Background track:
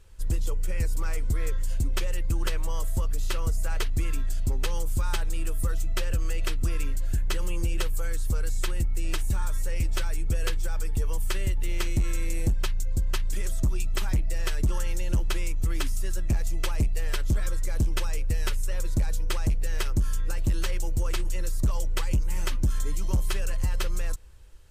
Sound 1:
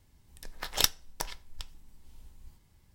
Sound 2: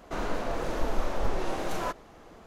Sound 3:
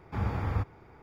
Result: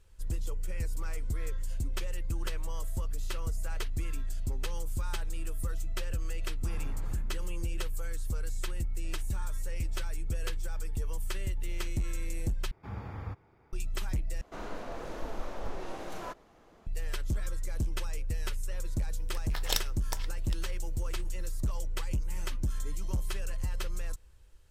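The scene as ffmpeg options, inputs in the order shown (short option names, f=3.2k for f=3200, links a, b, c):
-filter_complex "[3:a]asplit=2[a][b];[0:a]volume=-7dB[c];[a]asplit=8[d][e][f][g][h][i][j][k];[e]adelay=84,afreqshift=66,volume=-7dB[l];[f]adelay=168,afreqshift=132,volume=-12.4dB[m];[g]adelay=252,afreqshift=198,volume=-17.7dB[n];[h]adelay=336,afreqshift=264,volume=-23.1dB[o];[i]adelay=420,afreqshift=330,volume=-28.4dB[p];[j]adelay=504,afreqshift=396,volume=-33.8dB[q];[k]adelay=588,afreqshift=462,volume=-39.1dB[r];[d][l][m][n][o][p][q][r]amix=inputs=8:normalize=0[s];[1:a]alimiter=limit=-8.5dB:level=0:latency=1:release=31[t];[c]asplit=3[u][v][w];[u]atrim=end=12.714[x];[b]atrim=end=1.02,asetpts=PTS-STARTPTS,volume=-9.5dB[y];[v]atrim=start=13.726:end=14.414[z];[2:a]atrim=end=2.46,asetpts=PTS-STARTPTS,volume=-8.5dB[aa];[w]atrim=start=16.866[ab];[s]atrim=end=1.02,asetpts=PTS-STARTPTS,volume=-16dB,afade=t=in:d=0.004:c=hsin,afade=t=out:st=1.016:d=0.004:c=hsin,adelay=6510[ac];[t]atrim=end=2.94,asetpts=PTS-STARTPTS,volume=-2dB,afade=t=in:d=0.004:c=hsin,afade=t=out:st=2.936:d=0.004:c=hsin,adelay=834372S[ad];[x][y]acrossfade=d=0.004:c1=hsin:c2=hsin[ae];[ae][z]acrossfade=d=0.004:c1=hsin:c2=hsin[af];[af][aa]acrossfade=d=0.004:c1=hsin:c2=hsin[ag];[ag][ab]acrossfade=d=0.004:c1=hsin:c2=hsin[ah];[ah][ac][ad]amix=inputs=3:normalize=0"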